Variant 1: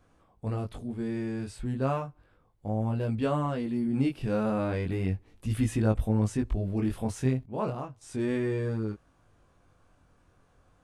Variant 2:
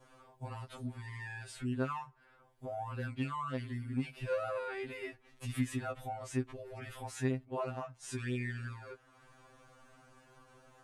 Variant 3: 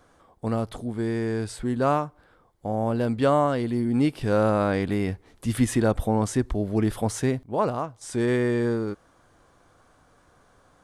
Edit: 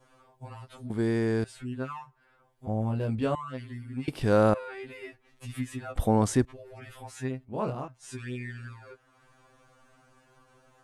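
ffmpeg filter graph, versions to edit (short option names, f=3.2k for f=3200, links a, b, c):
-filter_complex "[2:a]asplit=3[a][b][c];[0:a]asplit=2[d][e];[1:a]asplit=6[f][g][h][i][j][k];[f]atrim=end=0.902[l];[a]atrim=start=0.898:end=1.442[m];[g]atrim=start=1.438:end=2.672[n];[d]atrim=start=2.668:end=3.352[o];[h]atrim=start=3.348:end=4.082[p];[b]atrim=start=4.078:end=4.542[q];[i]atrim=start=4.538:end=5.962[r];[c]atrim=start=5.958:end=6.452[s];[j]atrim=start=6.448:end=7.482[t];[e]atrim=start=7.478:end=7.882[u];[k]atrim=start=7.878[v];[l][m]acrossfade=d=0.004:c1=hsin:c2=hsin[w];[w][n]acrossfade=d=0.004:c1=hsin:c2=hsin[x];[x][o]acrossfade=d=0.004:c1=hsin:c2=hsin[y];[y][p]acrossfade=d=0.004:c1=hsin:c2=hsin[z];[z][q]acrossfade=d=0.004:c1=hsin:c2=hsin[aa];[aa][r]acrossfade=d=0.004:c1=hsin:c2=hsin[ab];[ab][s]acrossfade=d=0.004:c1=hsin:c2=hsin[ac];[ac][t]acrossfade=d=0.004:c1=hsin:c2=hsin[ad];[ad][u]acrossfade=d=0.004:c1=hsin:c2=hsin[ae];[ae][v]acrossfade=d=0.004:c1=hsin:c2=hsin"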